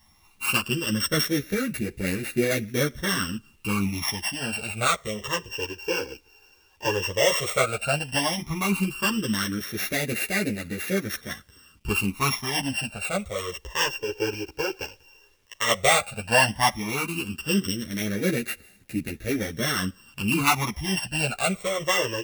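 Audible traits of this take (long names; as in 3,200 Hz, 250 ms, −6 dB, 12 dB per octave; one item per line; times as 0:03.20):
a buzz of ramps at a fixed pitch in blocks of 16 samples
phaser sweep stages 12, 0.12 Hz, lowest notch 200–1,000 Hz
a quantiser's noise floor 12 bits, dither none
a shimmering, thickened sound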